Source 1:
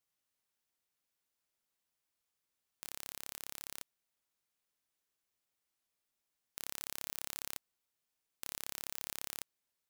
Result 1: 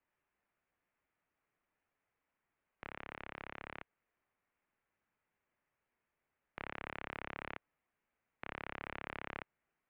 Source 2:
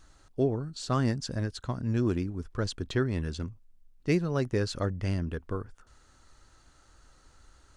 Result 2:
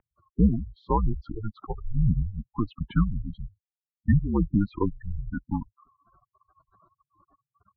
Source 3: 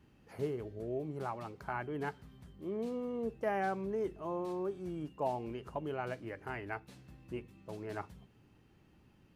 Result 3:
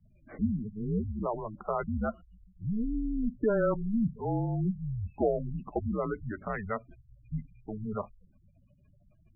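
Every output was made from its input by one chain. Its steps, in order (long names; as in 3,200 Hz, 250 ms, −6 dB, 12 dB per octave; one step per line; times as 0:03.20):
gate on every frequency bin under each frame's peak −15 dB strong
single-sideband voice off tune −210 Hz 210–2,600 Hz
level +8 dB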